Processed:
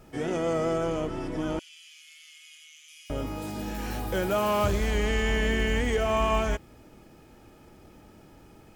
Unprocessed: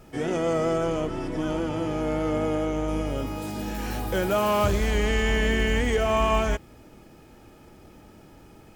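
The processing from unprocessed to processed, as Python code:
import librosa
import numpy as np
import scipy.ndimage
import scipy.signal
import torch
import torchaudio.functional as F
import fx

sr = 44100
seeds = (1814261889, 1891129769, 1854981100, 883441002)

y = fx.steep_highpass(x, sr, hz=2500.0, slope=36, at=(1.59, 3.1))
y = y * librosa.db_to_amplitude(-2.5)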